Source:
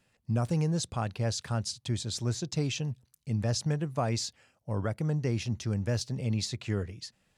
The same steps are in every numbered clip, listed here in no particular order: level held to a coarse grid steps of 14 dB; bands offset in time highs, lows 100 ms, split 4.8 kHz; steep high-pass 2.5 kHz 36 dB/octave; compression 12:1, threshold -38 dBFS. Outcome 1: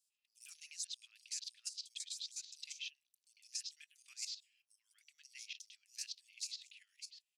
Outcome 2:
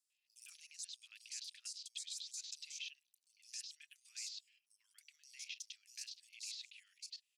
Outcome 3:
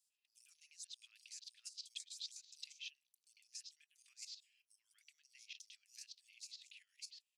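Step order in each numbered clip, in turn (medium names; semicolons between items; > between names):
bands offset in time > level held to a coarse grid > steep high-pass > compression; steep high-pass > level held to a coarse grid > bands offset in time > compression; bands offset in time > level held to a coarse grid > compression > steep high-pass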